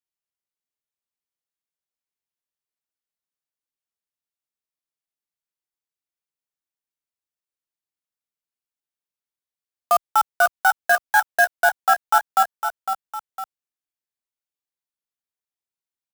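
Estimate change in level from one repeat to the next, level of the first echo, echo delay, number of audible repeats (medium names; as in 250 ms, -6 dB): -6.0 dB, -8.0 dB, 506 ms, 2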